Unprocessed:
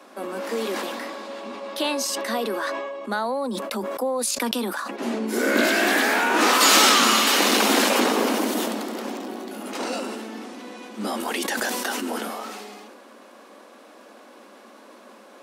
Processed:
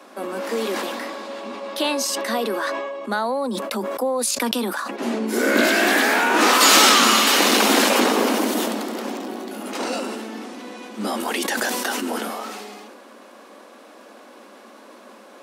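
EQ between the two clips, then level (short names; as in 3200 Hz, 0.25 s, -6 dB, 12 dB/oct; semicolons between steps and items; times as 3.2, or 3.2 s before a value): HPF 80 Hz; +2.5 dB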